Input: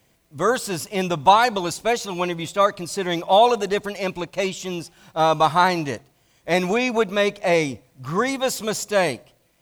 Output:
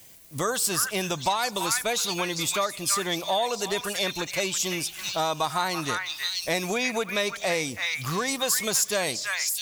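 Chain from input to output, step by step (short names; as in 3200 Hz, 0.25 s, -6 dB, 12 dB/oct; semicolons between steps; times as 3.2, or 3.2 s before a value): high shelf 6000 Hz +9.5 dB; delay with a stepping band-pass 0.328 s, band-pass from 1700 Hz, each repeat 1.4 oct, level -3.5 dB; compressor 3:1, threshold -31 dBFS, peak gain reduction 16.5 dB; high shelf 2300 Hz +7.5 dB; gain +2 dB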